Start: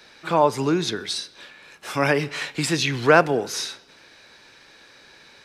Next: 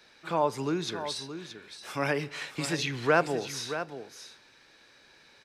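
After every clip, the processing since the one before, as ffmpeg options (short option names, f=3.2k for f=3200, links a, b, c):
-af "aecho=1:1:624:0.299,volume=-8.5dB"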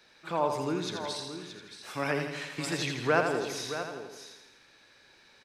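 -af "aecho=1:1:83|166|249|332|415|498|581:0.501|0.281|0.157|0.088|0.0493|0.0276|0.0155,volume=-2.5dB"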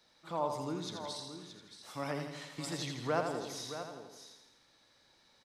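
-af "equalizer=f=400:t=o:w=0.33:g=-7,equalizer=f=1.6k:t=o:w=0.33:g=-9,equalizer=f=2.5k:t=o:w=0.33:g=-10,volume=-5dB"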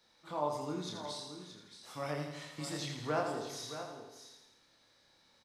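-filter_complex "[0:a]asplit=2[a][b];[b]adelay=27,volume=-3dB[c];[a][c]amix=inputs=2:normalize=0,volume=-2.5dB"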